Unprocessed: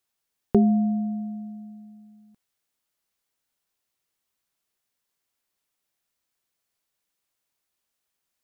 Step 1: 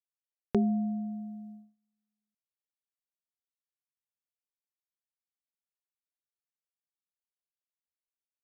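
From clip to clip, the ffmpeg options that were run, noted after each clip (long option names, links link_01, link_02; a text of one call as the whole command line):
ffmpeg -i in.wav -af "agate=range=-30dB:threshold=-39dB:ratio=16:detection=peak,volume=-8dB" out.wav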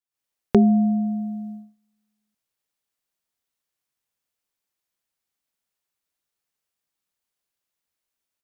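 ffmpeg -i in.wav -af "dynaudnorm=framelen=100:gausssize=3:maxgain=11.5dB" out.wav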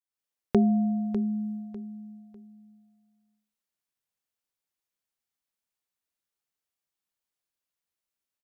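ffmpeg -i in.wav -af "aecho=1:1:599|1198|1797:0.266|0.0745|0.0209,volume=-6dB" out.wav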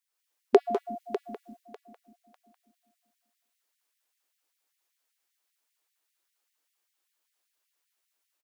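ffmpeg -i in.wav -filter_complex "[0:a]bandreject=frequency=282.9:width_type=h:width=4,bandreject=frequency=565.8:width_type=h:width=4,bandreject=frequency=848.7:width_type=h:width=4,bandreject=frequency=1131.6:width_type=h:width=4,bandreject=frequency=1414.5:width_type=h:width=4,bandreject=frequency=1697.4:width_type=h:width=4,bandreject=frequency=1980.3:width_type=h:width=4,bandreject=frequency=2263.2:width_type=h:width=4,bandreject=frequency=2546.1:width_type=h:width=4,bandreject=frequency=2829:width_type=h:width=4,bandreject=frequency=3111.9:width_type=h:width=4,bandreject=frequency=3394.8:width_type=h:width=4,bandreject=frequency=3677.7:width_type=h:width=4,bandreject=frequency=3960.6:width_type=h:width=4,bandreject=frequency=4243.5:width_type=h:width=4,bandreject=frequency=4526.4:width_type=h:width=4,bandreject=frequency=4809.3:width_type=h:width=4,bandreject=frequency=5092.2:width_type=h:width=4,bandreject=frequency=5375.1:width_type=h:width=4,asplit=2[link_01][link_02];[link_02]adelay=200,highpass=300,lowpass=3400,asoftclip=type=hard:threshold=-19.5dB,volume=-8dB[link_03];[link_01][link_03]amix=inputs=2:normalize=0,afftfilt=real='re*gte(b*sr/1024,220*pow(1800/220,0.5+0.5*sin(2*PI*5.1*pts/sr)))':imag='im*gte(b*sr/1024,220*pow(1800/220,0.5+0.5*sin(2*PI*5.1*pts/sr)))':win_size=1024:overlap=0.75,volume=9dB" out.wav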